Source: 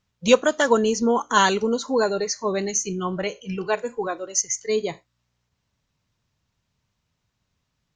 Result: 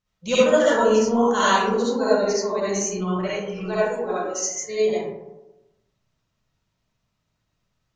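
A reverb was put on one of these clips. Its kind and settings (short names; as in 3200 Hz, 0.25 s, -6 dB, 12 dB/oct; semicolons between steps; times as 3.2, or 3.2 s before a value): digital reverb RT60 1 s, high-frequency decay 0.35×, pre-delay 25 ms, DRR -10 dB; gain -9.5 dB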